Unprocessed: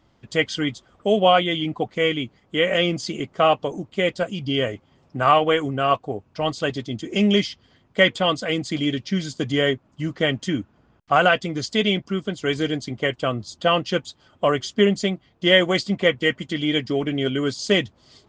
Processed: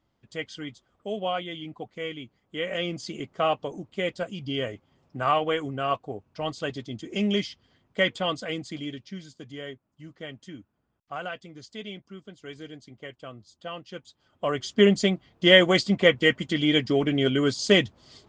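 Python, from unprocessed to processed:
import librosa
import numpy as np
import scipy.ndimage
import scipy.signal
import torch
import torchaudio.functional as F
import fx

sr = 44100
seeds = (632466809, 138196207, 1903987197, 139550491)

y = fx.gain(x, sr, db=fx.line((2.23, -13.0), (3.17, -7.0), (8.43, -7.0), (9.42, -18.0), (13.88, -18.0), (14.46, -8.0), (14.87, 0.0)))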